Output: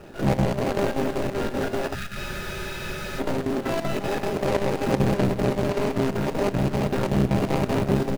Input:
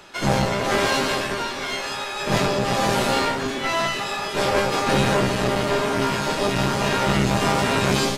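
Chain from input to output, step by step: median filter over 41 samples; in parallel at -2 dB: compressor with a negative ratio -34 dBFS, ratio -1; on the sum: spectral selection erased 1.95–2.20 s, 230–1200 Hz; square tremolo 5.2 Hz, depth 65%, duty 75%; on a send: feedback delay 131 ms, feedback 53%, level -19 dB; on the sum: spectral freeze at 2.18 s, 1.01 s

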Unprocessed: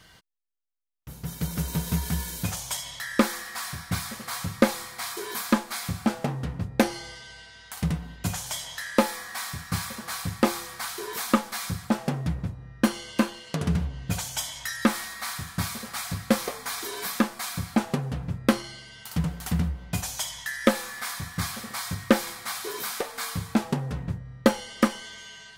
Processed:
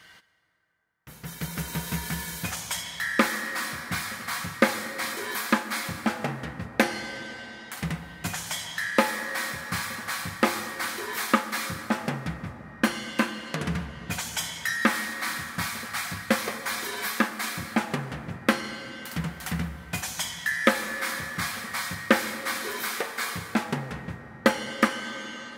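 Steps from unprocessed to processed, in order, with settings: high-pass 170 Hz 6 dB/octave; peaking EQ 1.9 kHz +8 dB 1.3 oct; plate-style reverb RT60 4.6 s, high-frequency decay 0.4×, DRR 10.5 dB; trim -1.5 dB

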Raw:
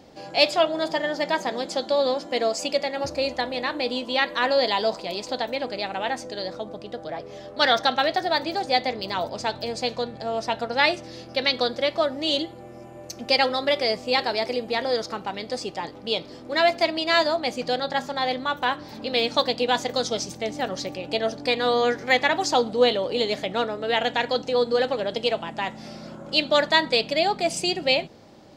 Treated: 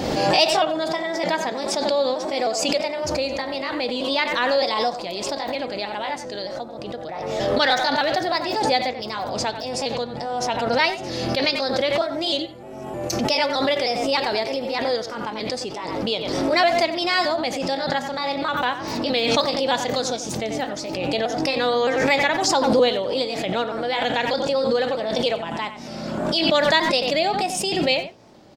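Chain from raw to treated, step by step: pitch shift switched off and on +1.5 st, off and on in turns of 308 ms; speakerphone echo 90 ms, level -11 dB; swell ahead of each attack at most 30 dB/s

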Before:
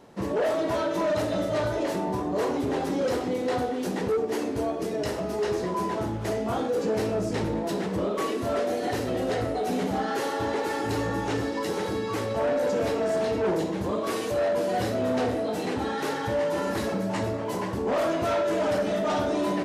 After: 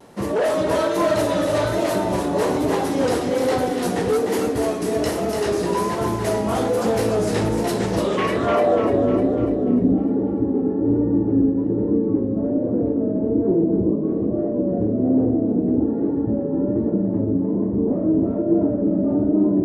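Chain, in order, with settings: low-pass sweep 11 kHz -> 300 Hz, 7.72–9.00 s; two-band feedback delay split 360 Hz, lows 403 ms, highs 298 ms, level -5 dB; vibrato 1.2 Hz 53 cents; trim +5 dB

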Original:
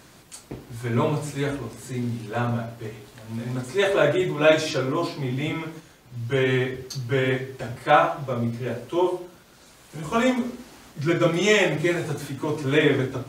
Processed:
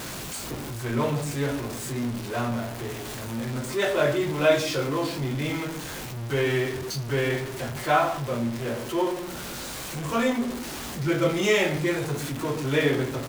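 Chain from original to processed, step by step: jump at every zero crossing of -25.5 dBFS; doubling 21 ms -10.5 dB; trim -5 dB

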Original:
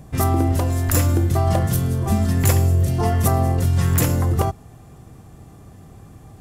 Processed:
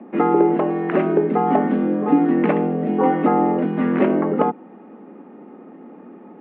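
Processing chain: tilt EQ -2.5 dB/octave; mistuned SSB +77 Hz 180–2600 Hz; trim +3 dB

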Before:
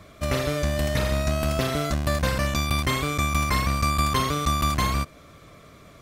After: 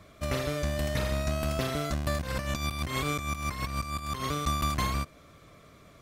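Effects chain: 2.19–4.24 s: compressor with a negative ratio -26 dBFS, ratio -0.5; trim -5.5 dB

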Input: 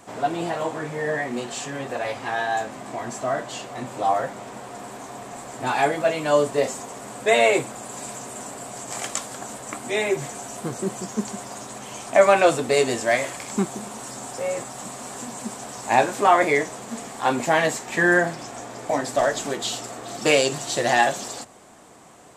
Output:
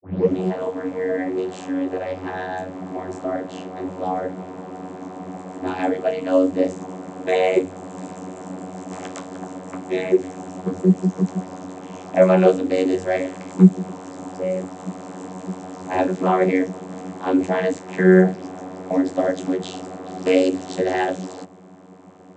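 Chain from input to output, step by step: tape start-up on the opening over 0.35 s; bass shelf 390 Hz +8.5 dB; vocoder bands 32, saw 92.7 Hz; dynamic bell 970 Hz, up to -6 dB, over -32 dBFS, Q 1.2; trim +1.5 dB

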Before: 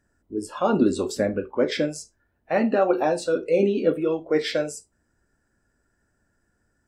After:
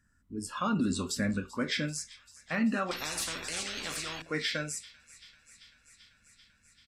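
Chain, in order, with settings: high-order bell 520 Hz -15 dB; peak limiter -21 dBFS, peak gain reduction 8.5 dB; on a send: feedback echo behind a high-pass 389 ms, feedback 77%, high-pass 2.4 kHz, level -18 dB; on the sum: resampled via 32 kHz; 2.91–4.22 s: spectrum-flattening compressor 10:1

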